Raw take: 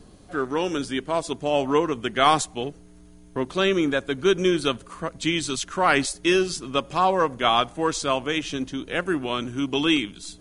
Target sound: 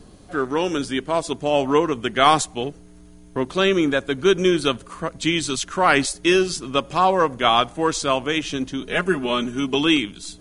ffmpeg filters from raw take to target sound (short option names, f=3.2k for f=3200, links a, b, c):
-filter_complex "[0:a]asettb=1/sr,asplit=3[a][b][c];[a]atrim=end=8.814[d];[b]atrim=start=8.81:end=9.75,asetpts=PTS-STARTPTS,afade=t=in:d=0.004:c=qsin,afade=t=out:st=0.936:d=0.004:c=qsin,aecho=1:1:4.8:0.74,atrim=end_sample=41454[e];[c]atrim=start=9.746[f];[d][e]acrossfade=d=0.004:c1=hsin:c2=qsin[g];[g][f]acrossfade=d=0.004:c1=qsin:c2=hsin,volume=3dB"